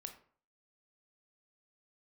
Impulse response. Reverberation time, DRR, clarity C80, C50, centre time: 0.50 s, 5.5 dB, 14.0 dB, 10.0 dB, 12 ms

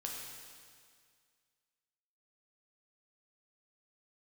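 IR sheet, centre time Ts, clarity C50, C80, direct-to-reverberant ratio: 92 ms, 1.0 dB, 2.5 dB, -1.5 dB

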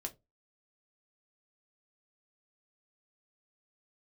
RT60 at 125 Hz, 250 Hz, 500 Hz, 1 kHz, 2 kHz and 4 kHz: 0.30, 0.25, 0.25, 0.20, 0.15, 0.15 s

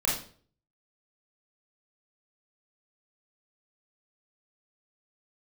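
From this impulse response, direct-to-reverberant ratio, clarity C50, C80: -4.5 dB, 3.5 dB, 10.0 dB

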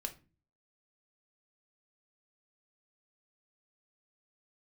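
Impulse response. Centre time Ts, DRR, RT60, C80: 7 ms, 5.0 dB, 0.35 s, 22.0 dB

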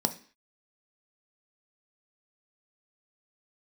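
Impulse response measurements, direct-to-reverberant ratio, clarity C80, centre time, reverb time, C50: 7.0 dB, 20.0 dB, 6 ms, 0.45 s, 15.0 dB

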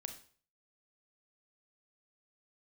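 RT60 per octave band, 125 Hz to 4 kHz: 0.55, 0.45, 0.45, 0.45, 0.45, 0.40 s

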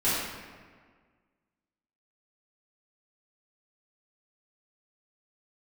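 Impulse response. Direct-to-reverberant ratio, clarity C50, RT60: -13.5 dB, -2.0 dB, 1.7 s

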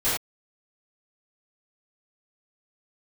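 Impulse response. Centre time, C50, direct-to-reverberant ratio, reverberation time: 53 ms, 0.0 dB, -16.0 dB, not exponential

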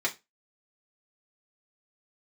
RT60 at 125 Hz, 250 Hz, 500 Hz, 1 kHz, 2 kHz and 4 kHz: 0.25, 0.25, 0.20, 0.20, 0.20, 0.20 s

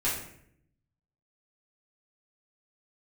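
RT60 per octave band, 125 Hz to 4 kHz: 1.2, 1.0, 0.75, 0.60, 0.65, 0.50 s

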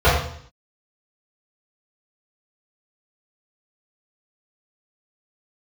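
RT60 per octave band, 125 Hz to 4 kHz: 0.70, 0.65, 0.60, 0.60, 0.60, 0.60 s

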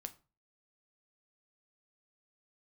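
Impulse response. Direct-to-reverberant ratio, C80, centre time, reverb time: 8.0 dB, 23.0 dB, 4 ms, 0.35 s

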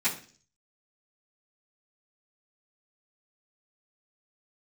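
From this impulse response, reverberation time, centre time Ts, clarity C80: 0.45 s, 19 ms, 15.0 dB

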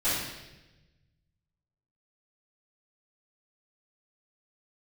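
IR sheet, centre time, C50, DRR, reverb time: 78 ms, -0.5 dB, -15.0 dB, 1.0 s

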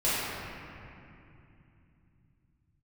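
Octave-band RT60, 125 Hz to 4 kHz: 5.5, 4.3, 2.8, 2.6, 2.6, 1.8 s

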